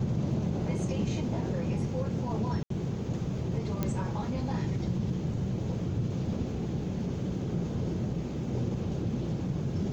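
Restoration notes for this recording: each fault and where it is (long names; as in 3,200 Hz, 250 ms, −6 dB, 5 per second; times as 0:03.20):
0:02.63–0:02.70: drop-out 73 ms
0:03.83: click −16 dBFS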